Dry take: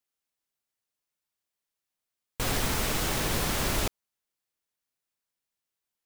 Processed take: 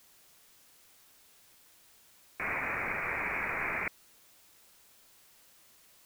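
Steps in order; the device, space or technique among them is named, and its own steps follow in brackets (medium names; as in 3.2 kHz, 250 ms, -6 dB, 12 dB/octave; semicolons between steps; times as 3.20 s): scrambled radio voice (band-pass 340–2700 Hz; frequency inversion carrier 2.7 kHz; white noise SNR 21 dB)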